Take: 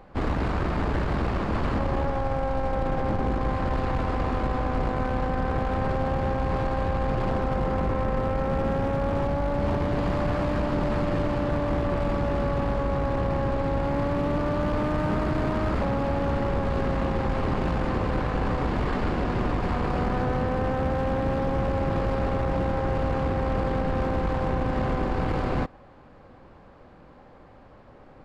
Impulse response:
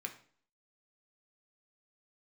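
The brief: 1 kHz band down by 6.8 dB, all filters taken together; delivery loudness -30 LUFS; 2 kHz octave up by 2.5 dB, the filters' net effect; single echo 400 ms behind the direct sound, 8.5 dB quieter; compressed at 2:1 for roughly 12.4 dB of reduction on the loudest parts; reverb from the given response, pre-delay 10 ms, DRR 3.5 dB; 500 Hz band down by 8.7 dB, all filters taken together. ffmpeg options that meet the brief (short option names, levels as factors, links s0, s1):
-filter_complex "[0:a]equalizer=f=500:t=o:g=-8.5,equalizer=f=1000:t=o:g=-7.5,equalizer=f=2000:t=o:g=6.5,acompressor=threshold=0.00447:ratio=2,aecho=1:1:400:0.376,asplit=2[s0][s1];[1:a]atrim=start_sample=2205,adelay=10[s2];[s1][s2]afir=irnorm=-1:irlink=0,volume=0.75[s3];[s0][s3]amix=inputs=2:normalize=0,volume=2.99"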